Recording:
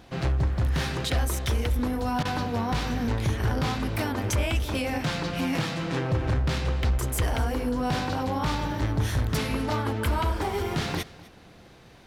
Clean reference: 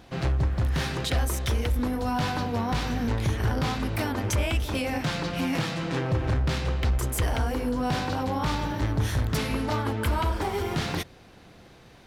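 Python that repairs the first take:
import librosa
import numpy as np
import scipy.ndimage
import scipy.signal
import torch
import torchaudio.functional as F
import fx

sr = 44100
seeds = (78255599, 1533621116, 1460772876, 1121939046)

y = fx.fix_interpolate(x, sr, at_s=(2.23,), length_ms=20.0)
y = fx.fix_echo_inverse(y, sr, delay_ms=252, level_db=-20.0)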